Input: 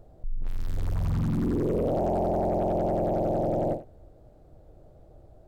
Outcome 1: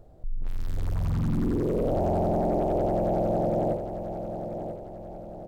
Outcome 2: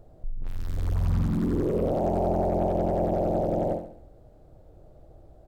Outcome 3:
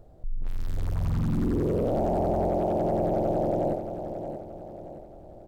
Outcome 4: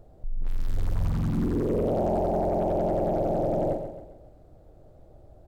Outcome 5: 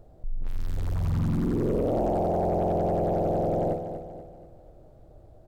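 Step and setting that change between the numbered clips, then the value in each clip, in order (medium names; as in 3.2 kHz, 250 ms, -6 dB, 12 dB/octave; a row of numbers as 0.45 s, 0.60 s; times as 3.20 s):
feedback delay, time: 990 ms, 69 ms, 626 ms, 134 ms, 241 ms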